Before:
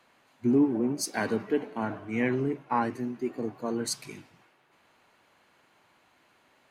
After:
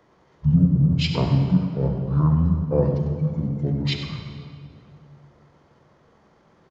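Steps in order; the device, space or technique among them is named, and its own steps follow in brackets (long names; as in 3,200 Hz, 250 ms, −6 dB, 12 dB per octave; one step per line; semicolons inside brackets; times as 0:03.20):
monster voice (pitch shifter −8.5 semitones; formants moved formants −4 semitones; low-shelf EQ 240 Hz +5 dB; single-tap delay 98 ms −11 dB; convolution reverb RT60 2.3 s, pre-delay 30 ms, DRR 5.5 dB)
level +4.5 dB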